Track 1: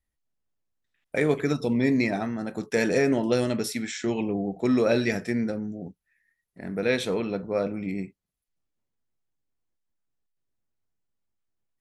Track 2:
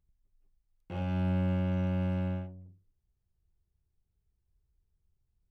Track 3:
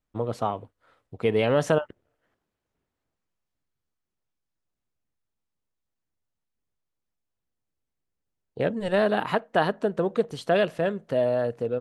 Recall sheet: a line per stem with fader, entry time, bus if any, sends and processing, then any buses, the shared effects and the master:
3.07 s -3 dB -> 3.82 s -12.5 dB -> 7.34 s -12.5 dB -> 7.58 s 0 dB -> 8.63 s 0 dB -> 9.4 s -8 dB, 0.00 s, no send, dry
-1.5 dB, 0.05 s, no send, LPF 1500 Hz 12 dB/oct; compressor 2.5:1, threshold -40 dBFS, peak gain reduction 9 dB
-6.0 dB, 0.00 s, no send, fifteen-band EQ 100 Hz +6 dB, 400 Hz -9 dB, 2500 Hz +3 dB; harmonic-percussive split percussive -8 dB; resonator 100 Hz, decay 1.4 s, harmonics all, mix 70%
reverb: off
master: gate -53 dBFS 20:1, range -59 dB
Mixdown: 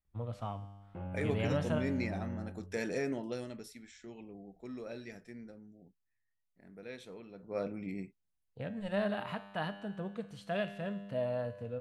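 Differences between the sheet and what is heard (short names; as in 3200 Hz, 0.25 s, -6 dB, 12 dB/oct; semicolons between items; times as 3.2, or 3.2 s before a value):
stem 1 -3.0 dB -> -12.5 dB; stem 3 -6.0 dB -> +1.0 dB; master: missing gate -53 dBFS 20:1, range -59 dB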